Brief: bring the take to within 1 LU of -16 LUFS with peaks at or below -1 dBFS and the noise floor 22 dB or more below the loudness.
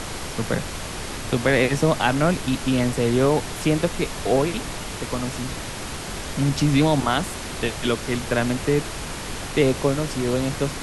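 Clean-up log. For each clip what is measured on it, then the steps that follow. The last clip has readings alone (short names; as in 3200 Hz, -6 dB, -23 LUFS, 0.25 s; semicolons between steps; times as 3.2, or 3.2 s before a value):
noise floor -32 dBFS; noise floor target -45 dBFS; loudness -23.0 LUFS; peak -6.0 dBFS; loudness target -16.0 LUFS
-> noise print and reduce 13 dB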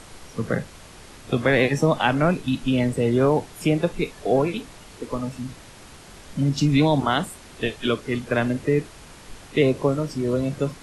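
noise floor -45 dBFS; loudness -23.0 LUFS; peak -6.0 dBFS; loudness target -16.0 LUFS
-> gain +7 dB; limiter -1 dBFS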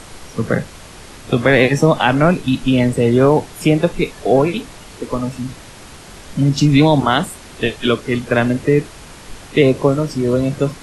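loudness -16.0 LUFS; peak -1.0 dBFS; noise floor -38 dBFS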